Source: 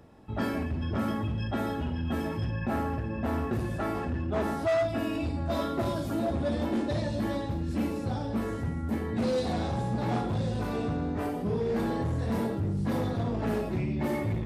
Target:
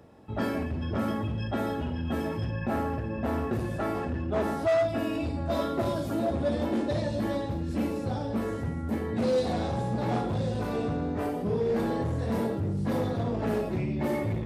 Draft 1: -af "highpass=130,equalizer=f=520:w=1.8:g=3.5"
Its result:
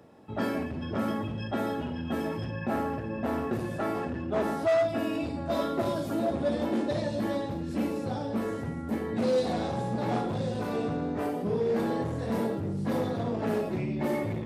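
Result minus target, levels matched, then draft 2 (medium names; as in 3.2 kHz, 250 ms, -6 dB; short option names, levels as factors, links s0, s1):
125 Hz band -3.0 dB
-af "highpass=55,equalizer=f=520:w=1.8:g=3.5"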